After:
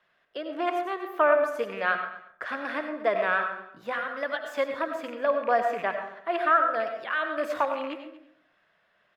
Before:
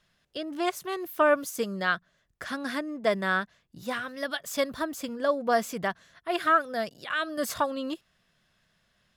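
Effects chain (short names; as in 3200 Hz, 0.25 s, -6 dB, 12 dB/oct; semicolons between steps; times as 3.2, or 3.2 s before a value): rattling part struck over -40 dBFS, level -29 dBFS; low shelf 73 Hz -11 dB; de-hum 125 Hz, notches 20; vibrato 6.9 Hz 37 cents; in parallel at -1 dB: compressor, threshold -35 dBFS, peak gain reduction 16.5 dB; on the sum: three-band isolator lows -15 dB, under 360 Hz, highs -22 dB, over 2700 Hz; echo 0.233 s -19.5 dB; on a send at -6 dB: reverb RT60 0.60 s, pre-delay 55 ms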